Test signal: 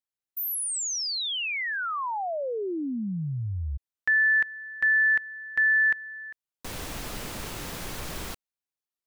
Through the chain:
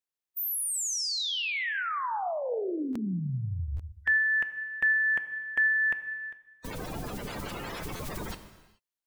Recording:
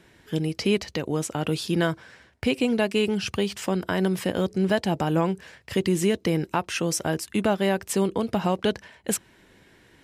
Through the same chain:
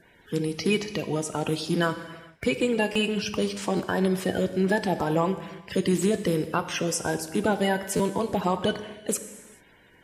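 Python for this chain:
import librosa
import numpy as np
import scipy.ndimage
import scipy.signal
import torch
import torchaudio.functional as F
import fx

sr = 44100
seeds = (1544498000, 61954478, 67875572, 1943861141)

y = fx.spec_quant(x, sr, step_db=30)
y = fx.rev_gated(y, sr, seeds[0], gate_ms=460, shape='falling', drr_db=9.0)
y = fx.buffer_glitch(y, sr, at_s=(2.92, 3.76, 7.96), block=512, repeats=2)
y = y * 10.0 ** (-1.0 / 20.0)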